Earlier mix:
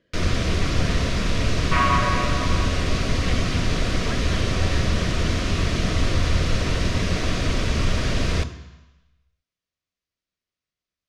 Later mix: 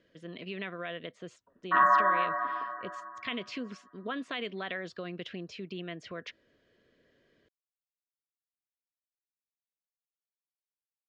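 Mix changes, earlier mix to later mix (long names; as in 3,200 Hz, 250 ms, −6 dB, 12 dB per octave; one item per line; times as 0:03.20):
first sound: muted
second sound: add Chebyshev low-pass filter 1,900 Hz, order 10
master: add low-shelf EQ 150 Hz −6 dB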